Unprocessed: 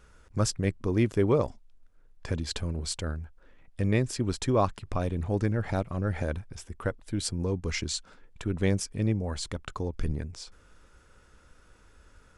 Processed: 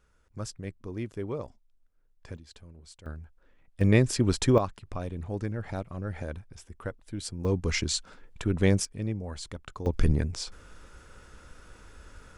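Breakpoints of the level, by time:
−10.5 dB
from 0:02.37 −18 dB
from 0:03.06 −6 dB
from 0:03.81 +4.5 dB
from 0:04.58 −5.5 dB
from 0:07.45 +3 dB
from 0:08.85 −5 dB
from 0:09.86 +7 dB

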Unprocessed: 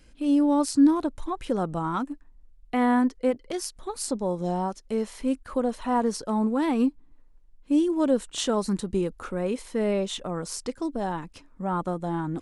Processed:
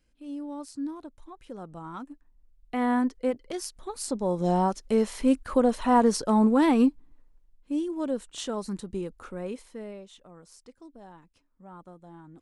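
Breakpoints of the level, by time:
0:01.41 −15.5 dB
0:02.92 −3 dB
0:04.03 −3 dB
0:04.55 +4 dB
0:06.65 +4 dB
0:07.72 −7 dB
0:09.51 −7 dB
0:10.06 −19 dB

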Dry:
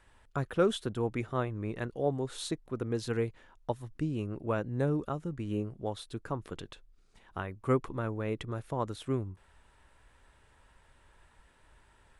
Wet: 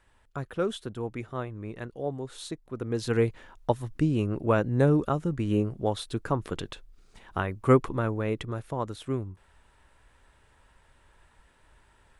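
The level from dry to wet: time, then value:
0:02.64 −2 dB
0:03.25 +8 dB
0:07.73 +8 dB
0:08.84 +1.5 dB

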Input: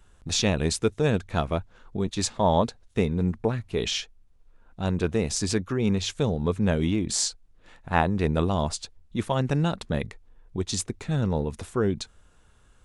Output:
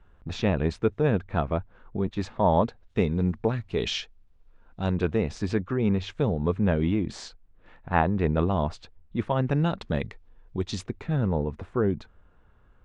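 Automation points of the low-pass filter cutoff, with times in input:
0:02.56 2,000 Hz
0:03.12 4,400 Hz
0:04.82 4,400 Hz
0:05.33 2,300 Hz
0:09.41 2,300 Hz
0:09.90 4,200 Hz
0:10.61 4,200 Hz
0:11.36 1,700 Hz

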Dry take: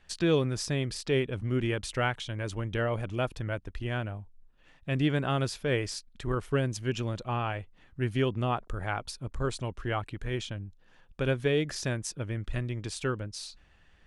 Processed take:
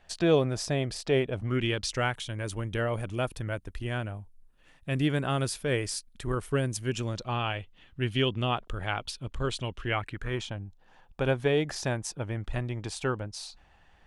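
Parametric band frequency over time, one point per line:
parametric band +10.5 dB 0.69 octaves
0:01.44 680 Hz
0:01.62 2,800 Hz
0:02.13 9,900 Hz
0:06.92 9,900 Hz
0:07.43 3,100 Hz
0:09.79 3,100 Hz
0:10.50 810 Hz

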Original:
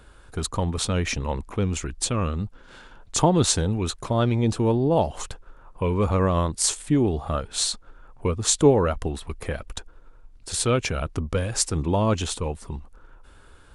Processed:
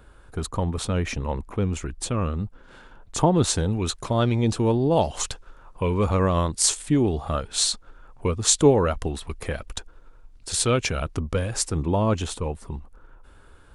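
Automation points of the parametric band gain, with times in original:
parametric band 5,400 Hz 2.5 octaves
0:03.31 −6 dB
0:03.91 +2.5 dB
0:04.73 +2.5 dB
0:05.29 +10 dB
0:05.93 +2.5 dB
0:11.03 +2.5 dB
0:11.80 −4.5 dB

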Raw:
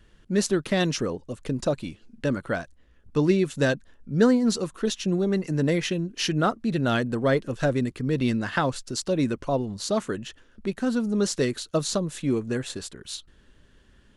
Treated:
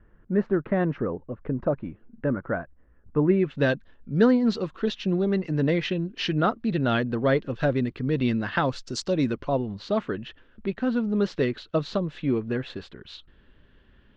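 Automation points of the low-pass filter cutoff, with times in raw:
low-pass filter 24 dB per octave
0:03.24 1,700 Hz
0:03.68 4,000 Hz
0:08.61 4,000 Hz
0:08.92 6,800 Hz
0:09.63 3,500 Hz

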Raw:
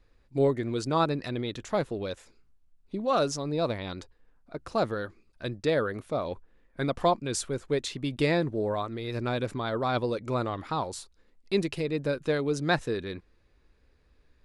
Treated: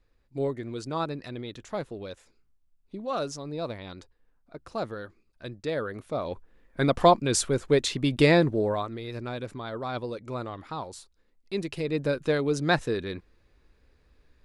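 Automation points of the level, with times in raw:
0:05.65 −5 dB
0:06.94 +6 dB
0:08.41 +6 dB
0:09.27 −5 dB
0:11.54 −5 dB
0:11.95 +2 dB

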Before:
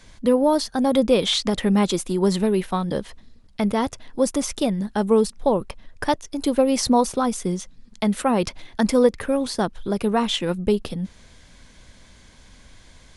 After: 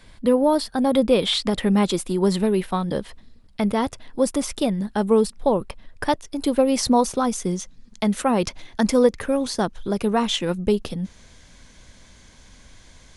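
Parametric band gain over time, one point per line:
parametric band 6,300 Hz 0.33 octaves
0:01.16 −11.5 dB
0:01.71 −4.5 dB
0:06.47 −4.5 dB
0:07.26 +4 dB

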